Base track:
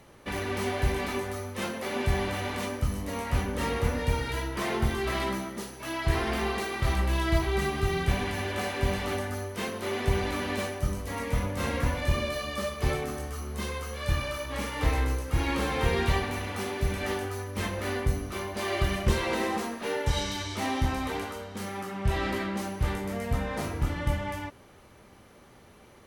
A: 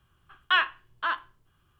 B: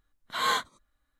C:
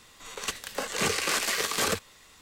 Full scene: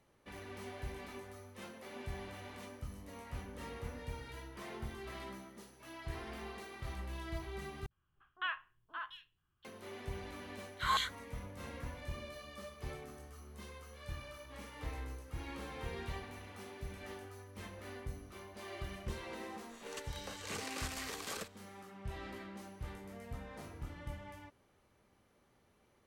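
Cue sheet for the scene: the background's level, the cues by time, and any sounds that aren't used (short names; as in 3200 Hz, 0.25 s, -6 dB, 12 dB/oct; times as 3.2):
base track -17 dB
7.86 replace with A -14.5 dB + three bands offset in time lows, mids, highs 50/740 ms, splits 540/3800 Hz
10.47 add B -9 dB + LFO high-pass saw down 4 Hz 650–3300 Hz
19.49 add C -16 dB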